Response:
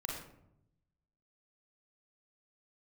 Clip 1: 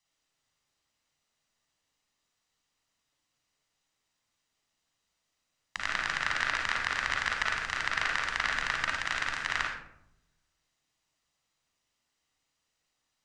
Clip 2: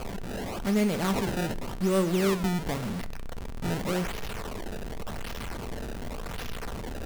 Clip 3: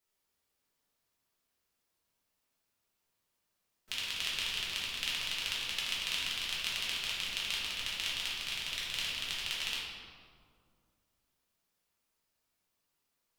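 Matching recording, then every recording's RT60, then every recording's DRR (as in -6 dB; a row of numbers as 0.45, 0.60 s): 1; 0.80, 0.50, 2.1 s; -2.0, 11.0, -7.5 dB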